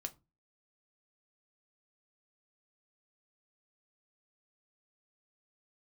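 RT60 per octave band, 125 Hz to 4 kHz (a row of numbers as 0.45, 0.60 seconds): 0.40, 0.40, 0.25, 0.25, 0.20, 0.15 seconds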